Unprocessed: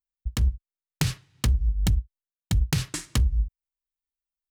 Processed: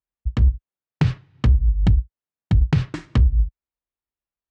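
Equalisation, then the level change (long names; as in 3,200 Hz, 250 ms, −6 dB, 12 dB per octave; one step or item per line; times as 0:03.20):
high-pass filter 46 Hz
head-to-tape spacing loss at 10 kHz 36 dB
+8.0 dB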